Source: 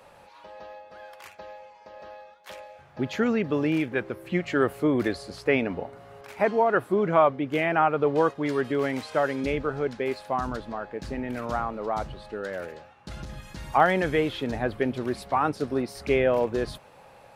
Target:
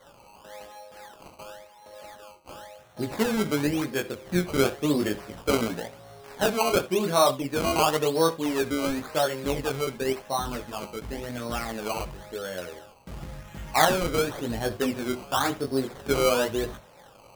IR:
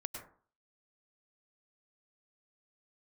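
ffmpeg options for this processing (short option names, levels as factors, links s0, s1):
-filter_complex "[0:a]flanger=delay=17.5:depth=5:speed=0.35,acrusher=samples=17:mix=1:aa=0.000001:lfo=1:lforange=17:lforate=0.94,asplit=2[s0][s1];[1:a]atrim=start_sample=2205,afade=t=out:st=0.19:d=0.01,atrim=end_sample=8820,asetrate=74970,aresample=44100[s2];[s1][s2]afir=irnorm=-1:irlink=0,volume=0.668[s3];[s0][s3]amix=inputs=2:normalize=0"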